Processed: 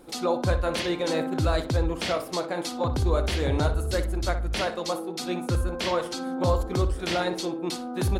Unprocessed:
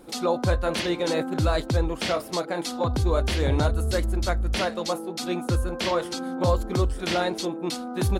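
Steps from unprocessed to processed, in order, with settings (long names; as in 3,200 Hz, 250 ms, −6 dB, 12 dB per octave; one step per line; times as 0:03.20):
parametric band 220 Hz −5 dB 0.21 octaves
feedback echo with a low-pass in the loop 61 ms, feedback 29%, low-pass 2,800 Hz, level −10 dB
level −1.5 dB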